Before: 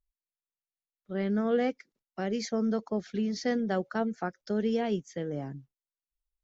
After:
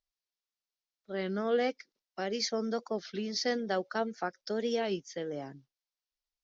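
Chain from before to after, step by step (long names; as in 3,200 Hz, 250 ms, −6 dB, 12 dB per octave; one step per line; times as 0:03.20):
Butterworth low-pass 5,600 Hz 36 dB per octave
bass and treble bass −12 dB, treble +12 dB
wow of a warped record 33 1/3 rpm, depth 100 cents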